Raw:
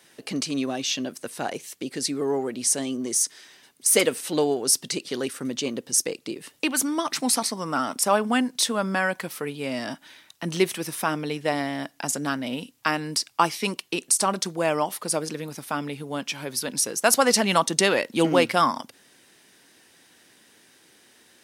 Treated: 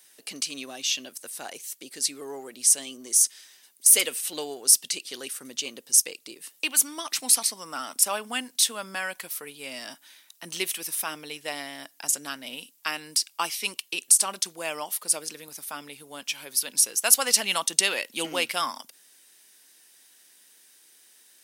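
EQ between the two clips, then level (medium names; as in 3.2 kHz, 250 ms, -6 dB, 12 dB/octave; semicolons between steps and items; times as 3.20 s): RIAA curve recording; dynamic bell 2.8 kHz, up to +6 dB, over -36 dBFS, Q 1.8; -9.0 dB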